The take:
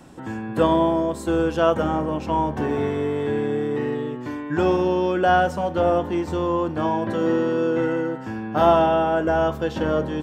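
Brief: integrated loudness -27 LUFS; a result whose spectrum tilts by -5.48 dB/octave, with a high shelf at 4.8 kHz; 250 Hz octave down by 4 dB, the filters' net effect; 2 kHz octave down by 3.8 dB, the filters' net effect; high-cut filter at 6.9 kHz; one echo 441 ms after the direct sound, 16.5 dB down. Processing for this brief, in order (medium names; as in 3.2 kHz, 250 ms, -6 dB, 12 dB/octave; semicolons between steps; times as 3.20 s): low-pass 6.9 kHz; peaking EQ 250 Hz -6 dB; peaking EQ 2 kHz -6.5 dB; treble shelf 4.8 kHz +3.5 dB; delay 441 ms -16.5 dB; trim -3 dB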